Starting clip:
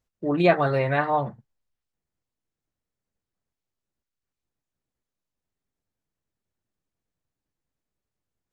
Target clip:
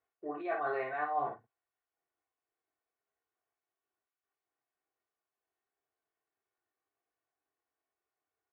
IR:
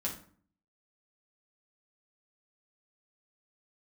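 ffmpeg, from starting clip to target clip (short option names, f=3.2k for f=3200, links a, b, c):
-filter_complex "[0:a]highpass=82,acrossover=split=440 2300:gain=0.1 1 0.0891[a][b][c];[a][b][c]amix=inputs=3:normalize=0,aecho=1:1:2.7:0.64,areverse,acompressor=threshold=-34dB:ratio=10,areverse,aecho=1:1:20|54:0.631|0.596"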